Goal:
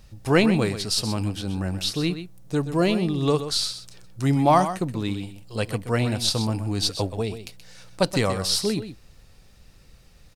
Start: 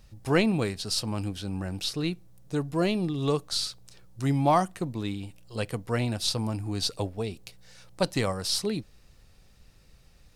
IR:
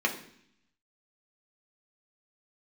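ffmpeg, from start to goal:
-af "aecho=1:1:127:0.282,volume=4.5dB"

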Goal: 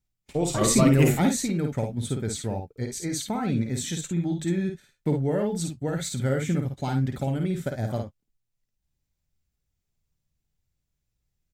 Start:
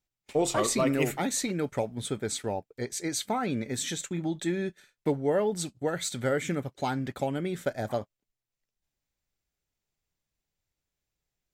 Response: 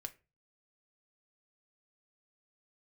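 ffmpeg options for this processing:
-filter_complex "[0:a]bass=f=250:g=13,treble=f=4k:g=3,asettb=1/sr,asplit=3[a][b][c];[a]atrim=end=0.614[d];[b]atrim=start=0.61:end=1.31,asetpts=PTS-STARTPTS,afade=t=in:d=0.004:c=qsin,afade=t=out:st=0.696:d=0.004:c=qsin,acontrast=50[e];[c]atrim=start=1.306[f];[d][e]acrossfade=d=0.004:c1=hsin:c2=qsin[g];[g][f]acrossfade=d=0.004:c1=qsin:c2=hsin,aecho=1:1:53|66:0.562|0.2,volume=-3.5dB"

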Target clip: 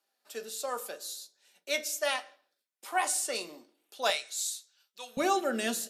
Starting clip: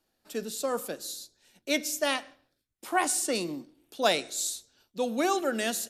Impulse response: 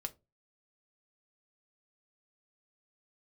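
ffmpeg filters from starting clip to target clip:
-filter_complex "[0:a]asetnsamples=n=441:p=0,asendcmd='4.1 highpass f 1400;5.17 highpass f 160',highpass=560[a];[1:a]atrim=start_sample=2205[b];[a][b]afir=irnorm=-1:irlink=0"

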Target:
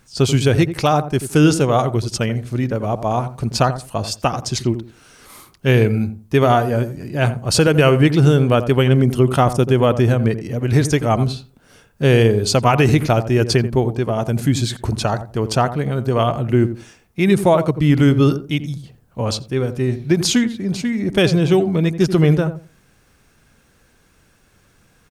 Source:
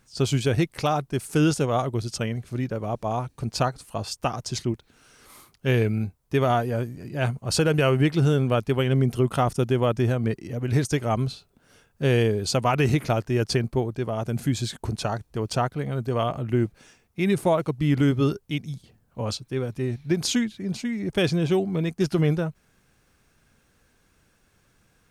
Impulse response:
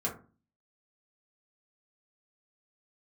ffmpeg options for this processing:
-filter_complex "[0:a]asplit=2[a][b];[b]adelay=86,lowpass=f=830:p=1,volume=-10dB,asplit=2[c][d];[d]adelay=86,lowpass=f=830:p=1,volume=0.23,asplit=2[e][f];[f]adelay=86,lowpass=f=830:p=1,volume=0.23[g];[a][c][e][g]amix=inputs=4:normalize=0,volume=7.5dB"

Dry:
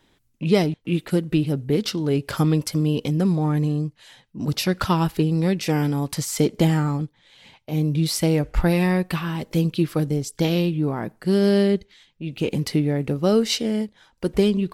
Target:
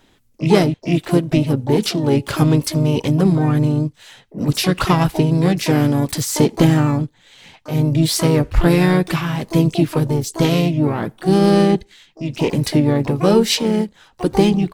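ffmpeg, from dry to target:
-filter_complex "[0:a]acontrast=46,asplit=4[a][b][c][d];[b]asetrate=35002,aresample=44100,atempo=1.25992,volume=-16dB[e];[c]asetrate=37084,aresample=44100,atempo=1.18921,volume=-8dB[f];[d]asetrate=88200,aresample=44100,atempo=0.5,volume=-11dB[g];[a][e][f][g]amix=inputs=4:normalize=0,volume=-1dB"

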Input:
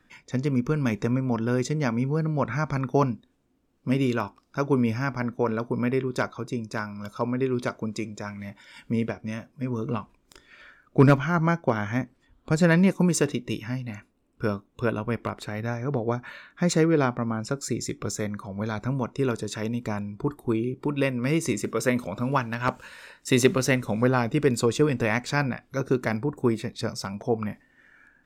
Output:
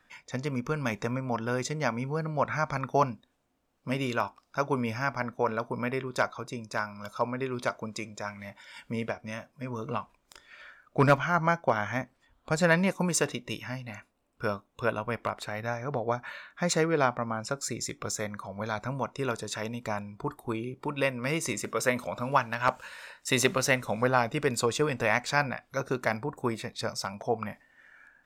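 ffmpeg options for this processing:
-af "lowshelf=f=480:t=q:w=1.5:g=-7"

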